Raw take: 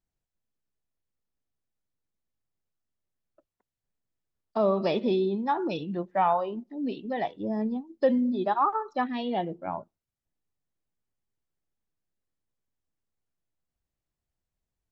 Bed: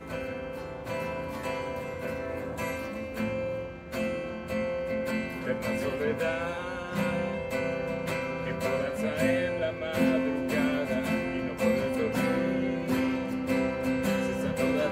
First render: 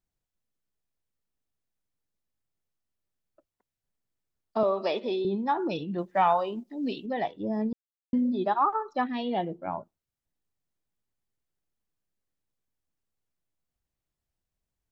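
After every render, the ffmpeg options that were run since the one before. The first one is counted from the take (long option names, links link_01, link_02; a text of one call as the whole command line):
ffmpeg -i in.wav -filter_complex "[0:a]asettb=1/sr,asplit=3[link_01][link_02][link_03];[link_01]atrim=end=4.634[link_04];[link_02]atrim=start=4.63:end=5.25,asetpts=PTS-STARTPTS,afade=type=in:duration=0.004:curve=qsin,afade=type=out:start_time=0.616:duration=0.004:curve=qsin,highpass=410[link_05];[link_03]atrim=start=5.246[link_06];[link_04][link_05]acrossfade=duration=0.004:curve1=hsin:curve2=qsin[link_07];[link_07][link_06]acrossfade=duration=0.004:curve1=qsin:curve2=hsin,asettb=1/sr,asplit=3[link_08][link_09][link_10];[link_08]atrim=end=5.984[link_11];[link_09]atrim=start=5.98:end=7.06,asetpts=PTS-STARTPTS,afade=type=in:duration=0.004:curve=qsin,afade=type=out:start_time=1.076:duration=0.004:curve=qsin,highshelf=frequency=2600:gain=10.5[link_12];[link_10]atrim=start=7.056[link_13];[link_11][link_12]acrossfade=duration=0.004:curve1=hsin:curve2=qsin[link_14];[link_14][link_13]acrossfade=duration=0.004:curve1=qsin:curve2=hsin,asplit=3[link_15][link_16][link_17];[link_15]atrim=end=7.73,asetpts=PTS-STARTPTS,afade=type=out:start_time=7.726:duration=0.004:curve=hsin[link_18];[link_16]atrim=start=7.73:end=8.13,asetpts=PTS-STARTPTS,volume=0[link_19];[link_17]atrim=start=8.13,asetpts=PTS-STARTPTS,afade=type=in:duration=0.004:curve=hsin[link_20];[link_18][link_19][link_20]concat=n=3:v=0:a=1" out.wav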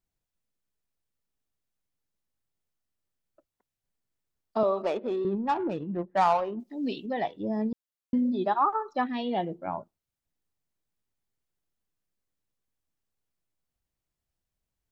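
ffmpeg -i in.wav -filter_complex "[0:a]asettb=1/sr,asplit=3[link_01][link_02][link_03];[link_01]atrim=end=4.824[link_04];[link_02]atrim=start=4.82:end=6.6,asetpts=PTS-STARTPTS,afade=type=in:duration=0.004:curve=qsin,afade=type=out:start_time=1.776:duration=0.004:curve=qsin,adynamicsmooth=sensitivity=2:basefreq=900[link_05];[link_03]atrim=start=6.596[link_06];[link_04][link_05]acrossfade=duration=0.004:curve1=hsin:curve2=qsin[link_07];[link_07][link_06]acrossfade=duration=0.004:curve1=qsin:curve2=hsin" out.wav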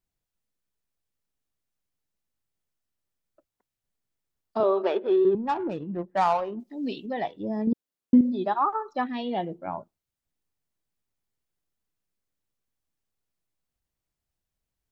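ffmpeg -i in.wav -filter_complex "[0:a]asettb=1/sr,asplit=3[link_01][link_02][link_03];[link_01]atrim=end=4.604[link_04];[link_02]atrim=start=4.6:end=5.35,asetpts=PTS-STARTPTS,afade=type=in:duration=0.004:curve=qsin,afade=type=out:start_time=0.746:duration=0.004:curve=qsin,highpass=200,equalizer=frequency=240:width_type=q:width=4:gain=-7,equalizer=frequency=380:width_type=q:width=4:gain=10,equalizer=frequency=890:width_type=q:width=4:gain=4,equalizer=frequency=1600:width_type=q:width=4:gain=8,equalizer=frequency=3200:width_type=q:width=4:gain=6,lowpass=frequency=5000:width=0.5412,lowpass=frequency=5000:width=1.3066[link_05];[link_03]atrim=start=5.346[link_06];[link_04][link_05]acrossfade=duration=0.004:curve1=hsin:curve2=qsin[link_07];[link_07][link_06]acrossfade=duration=0.004:curve1=qsin:curve2=hsin,asettb=1/sr,asplit=3[link_08][link_09][link_10];[link_08]atrim=end=7.674[link_11];[link_09]atrim=start=7.67:end=8.21,asetpts=PTS-STARTPTS,afade=type=in:duration=0.004:curve=qsin,afade=type=out:start_time=0.536:duration=0.004:curve=qsin,equalizer=frequency=290:width_type=o:width=2.1:gain=10[link_12];[link_10]atrim=start=8.206[link_13];[link_11][link_12]acrossfade=duration=0.004:curve1=hsin:curve2=qsin[link_14];[link_14][link_13]acrossfade=duration=0.004:curve1=qsin:curve2=hsin" out.wav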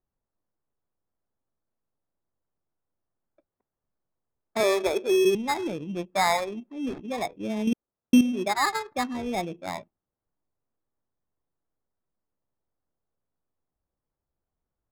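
ffmpeg -i in.wav -af "acrusher=samples=15:mix=1:aa=0.000001,adynamicsmooth=sensitivity=6.5:basefreq=1300" out.wav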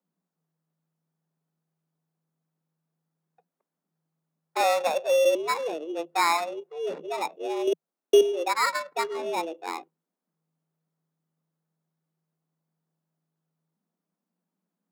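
ffmpeg -i in.wav -af "afreqshift=160" out.wav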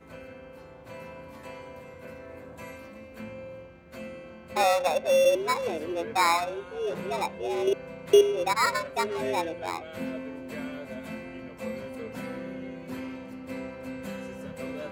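ffmpeg -i in.wav -i bed.wav -filter_complex "[1:a]volume=-9.5dB[link_01];[0:a][link_01]amix=inputs=2:normalize=0" out.wav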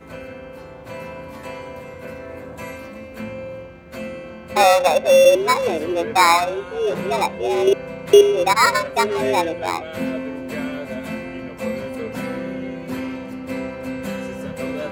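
ffmpeg -i in.wav -af "volume=9.5dB,alimiter=limit=-1dB:level=0:latency=1" out.wav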